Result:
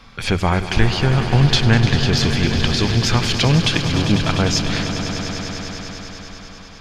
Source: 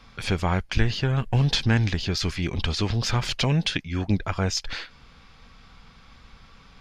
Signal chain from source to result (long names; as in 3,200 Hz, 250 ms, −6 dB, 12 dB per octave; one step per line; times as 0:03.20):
mains-hum notches 50/100 Hz
echo that builds up and dies away 100 ms, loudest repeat 5, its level −12 dB
level +6.5 dB